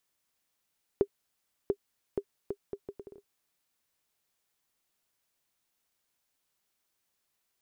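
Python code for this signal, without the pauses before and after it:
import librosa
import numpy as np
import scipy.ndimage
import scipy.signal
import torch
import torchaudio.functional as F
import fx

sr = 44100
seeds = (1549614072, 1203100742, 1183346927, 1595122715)

y = fx.bouncing_ball(sr, first_gap_s=0.69, ratio=0.69, hz=401.0, decay_ms=66.0, level_db=-13.5)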